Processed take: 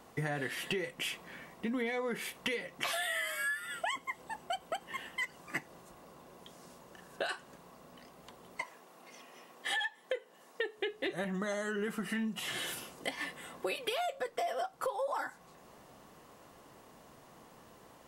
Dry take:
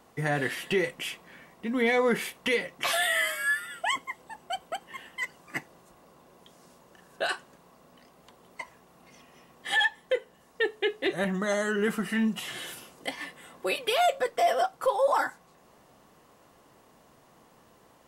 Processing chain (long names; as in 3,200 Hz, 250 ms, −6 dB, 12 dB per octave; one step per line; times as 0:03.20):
0:08.62–0:10.78: high-pass filter 290 Hz 12 dB per octave
downward compressor 8 to 1, threshold −34 dBFS, peak gain reduction 14.5 dB
level +1.5 dB